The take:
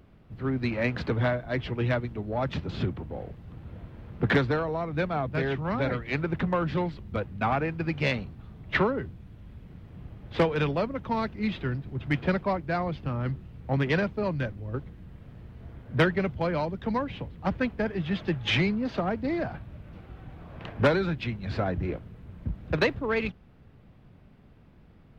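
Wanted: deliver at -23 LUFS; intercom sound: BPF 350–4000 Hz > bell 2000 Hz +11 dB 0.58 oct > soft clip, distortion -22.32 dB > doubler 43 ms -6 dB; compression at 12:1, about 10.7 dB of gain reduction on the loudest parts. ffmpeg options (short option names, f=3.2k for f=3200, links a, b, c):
-filter_complex "[0:a]acompressor=threshold=-28dB:ratio=12,highpass=350,lowpass=4k,equalizer=f=2k:t=o:w=0.58:g=11,asoftclip=threshold=-15.5dB,asplit=2[a][b];[b]adelay=43,volume=-6dB[c];[a][c]amix=inputs=2:normalize=0,volume=10.5dB"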